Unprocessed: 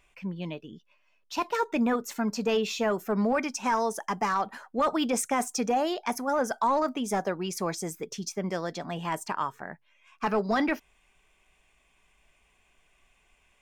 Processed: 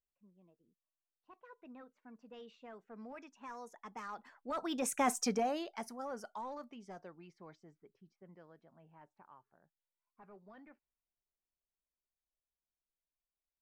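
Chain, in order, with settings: Doppler pass-by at 5.14, 21 m/s, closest 4.2 m; low-pass opened by the level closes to 830 Hz, open at -40.5 dBFS; gain -3 dB

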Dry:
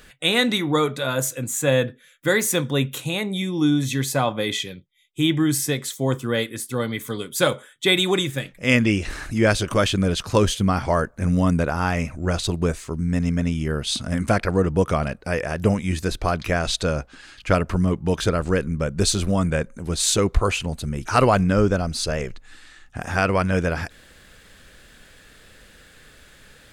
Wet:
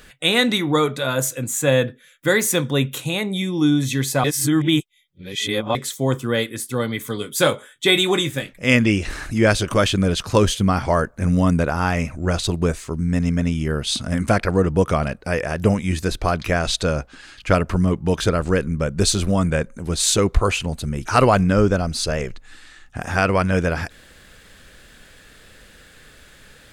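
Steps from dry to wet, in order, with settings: 4.24–5.75 reverse; 7.19–8.54 doubler 19 ms -9.5 dB; gain +2 dB

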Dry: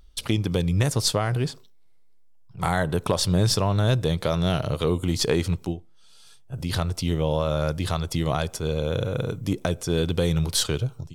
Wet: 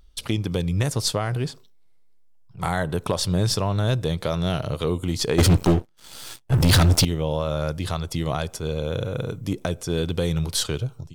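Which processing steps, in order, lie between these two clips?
5.38–7.05 sample leveller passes 5; gain -1 dB

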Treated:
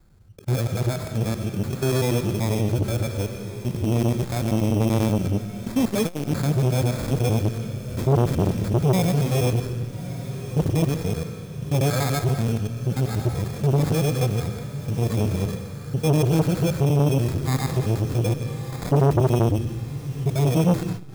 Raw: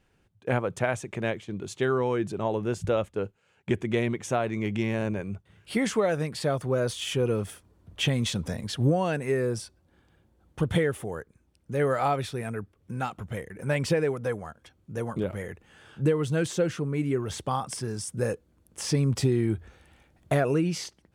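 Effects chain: local time reversal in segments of 96 ms; sample-rate reducer 2900 Hz, jitter 0%; limiter -21 dBFS, peak gain reduction 8.5 dB; tone controls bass +11 dB, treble +6 dB; diffused feedback echo 1.188 s, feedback 51%, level -14.5 dB; reverb RT60 1.2 s, pre-delay 80 ms, DRR 10 dB; harmonic-percussive split percussive -13 dB; core saturation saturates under 500 Hz; gain +6.5 dB

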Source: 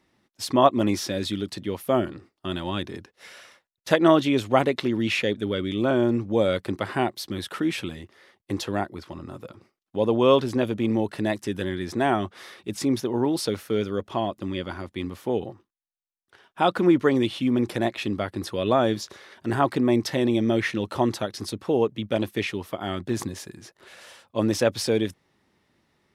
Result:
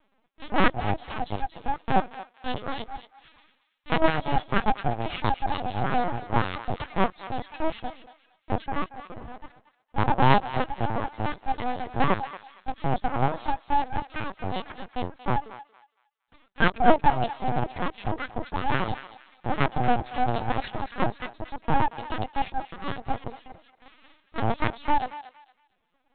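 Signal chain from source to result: minimum comb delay 2.4 ms; small resonant body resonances 220/390/730 Hz, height 10 dB, ringing for 25 ms; full-wave rectifier; reverb removal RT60 1 s; LPC vocoder at 8 kHz pitch kept; on a send: thinning echo 0.231 s, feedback 30%, high-pass 1100 Hz, level -11 dB; on the sum: gain -2.5 dB

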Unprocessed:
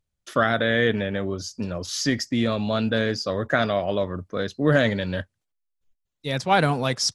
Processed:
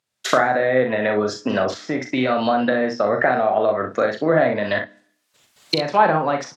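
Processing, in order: recorder AGC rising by 28 dB/s; weighting filter A; treble ducked by the level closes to 970 Hz, closed at -21 dBFS; early reflections 42 ms -6.5 dB, 68 ms -9 dB; on a send at -20.5 dB: reverb RT60 0.70 s, pre-delay 3 ms; on the sum: speed mistake 44.1 kHz file played as 48 kHz; gain +7 dB

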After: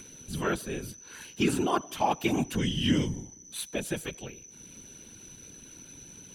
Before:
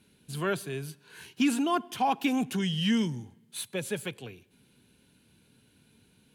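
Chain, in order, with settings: upward compressor, threshold -42 dBFS; whine 6000 Hz -48 dBFS; whisperiser

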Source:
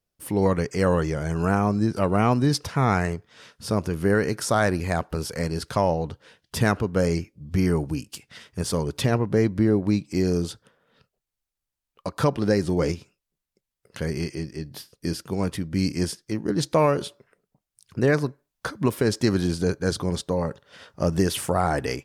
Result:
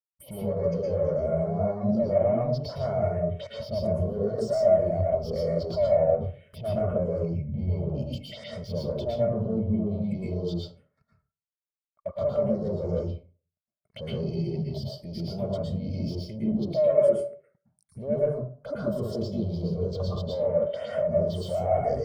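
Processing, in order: thirty-one-band EQ 315 Hz -10 dB, 630 Hz +7 dB, 1600 Hz -6 dB, 6300 Hz -4 dB; in parallel at -1 dB: compressor, threshold -35 dBFS, peak gain reduction 20.5 dB; on the sum: limiter -18.5 dBFS, peak gain reduction 12 dB; sample leveller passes 3; level quantiser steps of 16 dB; small resonant body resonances 600/2200/3100 Hz, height 11 dB, ringing for 30 ms; envelope phaser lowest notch 440 Hz, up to 4300 Hz, full sweep at -24.5 dBFS; plate-style reverb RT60 0.58 s, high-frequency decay 0.55×, pre-delay 0.1 s, DRR -3.5 dB; spectral expander 1.5:1

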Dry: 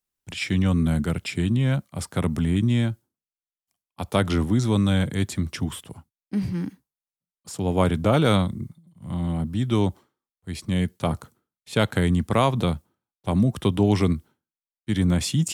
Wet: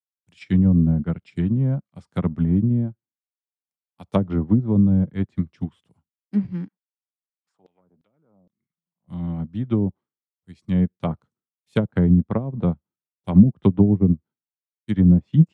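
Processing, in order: treble ducked by the level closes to 340 Hz, closed at -15.5 dBFS; HPF 59 Hz; bell 180 Hz +5 dB 0.79 oct; 6.67–9.07 LFO band-pass saw down 6.5 Hz -> 1.2 Hz 490–4300 Hz; upward expander 2.5:1, over -33 dBFS; gain +7 dB

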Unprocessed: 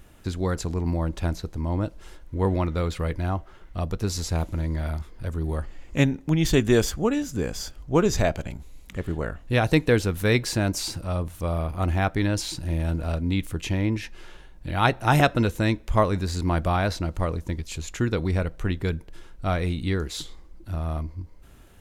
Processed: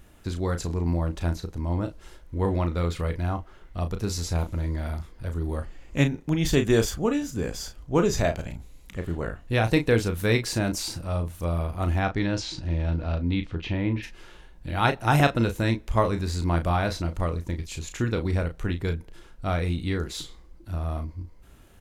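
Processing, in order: 11.99–14.02 LPF 7300 Hz -> 3600 Hz 24 dB/oct; doubler 35 ms -8 dB; gain -2 dB

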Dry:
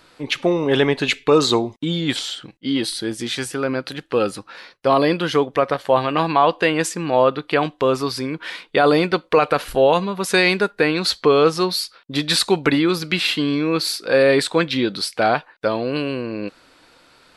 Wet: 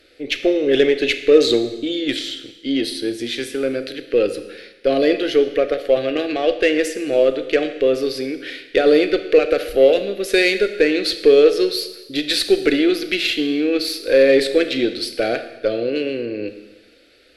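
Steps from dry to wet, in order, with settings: graphic EQ 500/1000/2000/8000 Hz +4/-8/+3/-9 dB; added harmonics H 6 -27 dB, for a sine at -2 dBFS; fixed phaser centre 400 Hz, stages 4; Schroeder reverb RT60 1.1 s, combs from 26 ms, DRR 9 dB; gain +1.5 dB

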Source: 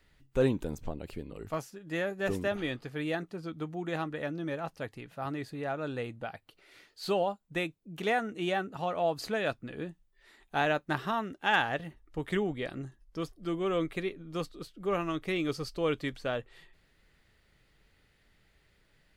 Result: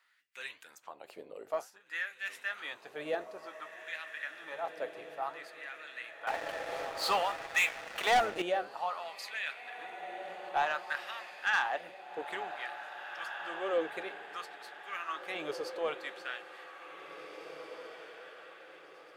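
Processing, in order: octaver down 1 oct, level -1 dB; flange 1.1 Hz, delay 5.3 ms, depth 9.5 ms, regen -80%; LFO high-pass sine 0.56 Hz 520–2100 Hz; diffused feedback echo 1.966 s, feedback 44%, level -9.5 dB; 6.27–8.42 sample leveller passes 3; soft clip -20 dBFS, distortion -18 dB

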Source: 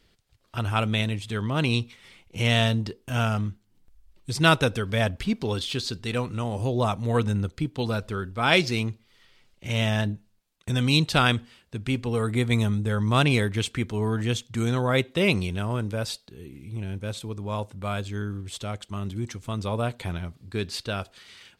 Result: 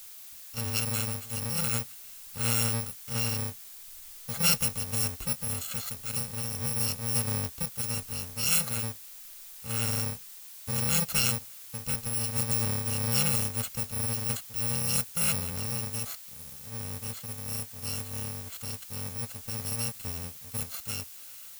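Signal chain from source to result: FFT order left unsorted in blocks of 128 samples; added noise blue -41 dBFS; gain -5.5 dB

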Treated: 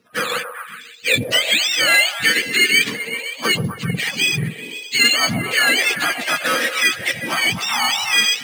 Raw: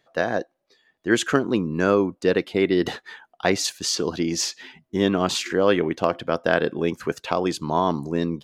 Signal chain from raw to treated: spectrum mirrored in octaves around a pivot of 910 Hz; in parallel at +0.5 dB: compressor, threshold -31 dBFS, peak gain reduction 20.5 dB; on the sum: soft clip -9.5 dBFS, distortion -16 dB; on a send: delay with a stepping band-pass 0.129 s, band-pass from 620 Hz, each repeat 0.7 oct, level -4 dB; on the sum: sample-and-hold 4×; weighting filter D; gain -1 dB

